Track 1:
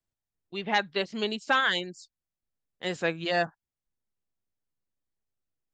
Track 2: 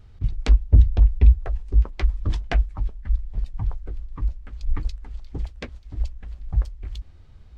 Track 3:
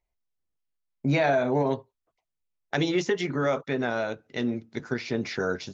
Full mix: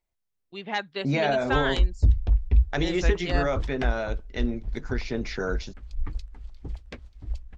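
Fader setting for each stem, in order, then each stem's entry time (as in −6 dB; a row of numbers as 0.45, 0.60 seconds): −3.5, −6.0, −1.5 decibels; 0.00, 1.30, 0.00 seconds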